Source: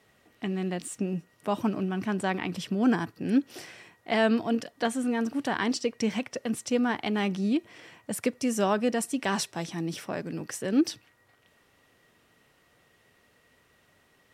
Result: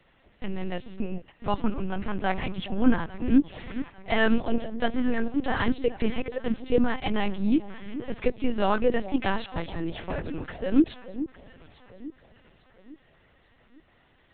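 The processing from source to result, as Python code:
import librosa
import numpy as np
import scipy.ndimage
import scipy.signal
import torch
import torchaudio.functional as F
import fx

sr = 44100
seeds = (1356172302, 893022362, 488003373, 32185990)

p1 = scipy.signal.sosfilt(scipy.signal.butter(2, 81.0, 'highpass', fs=sr, output='sos'), x)
p2 = p1 + 0.4 * np.pad(p1, (int(3.9 * sr / 1000.0), 0))[:len(p1)]
p3 = p2 + fx.echo_alternate(p2, sr, ms=425, hz=800.0, feedback_pct=63, wet_db=-12, dry=0)
p4 = fx.lpc_vocoder(p3, sr, seeds[0], excitation='pitch_kept', order=10)
y = p4 * librosa.db_to_amplitude(2.0)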